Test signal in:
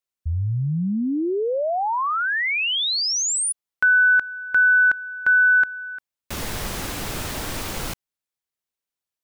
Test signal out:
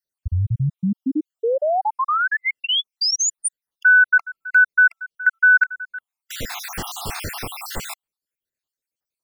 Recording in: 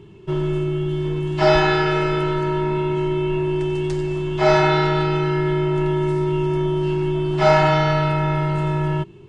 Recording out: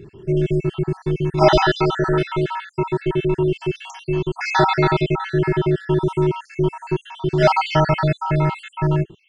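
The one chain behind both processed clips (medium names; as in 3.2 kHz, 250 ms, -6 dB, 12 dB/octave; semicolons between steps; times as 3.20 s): random holes in the spectrogram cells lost 61%; trim +4 dB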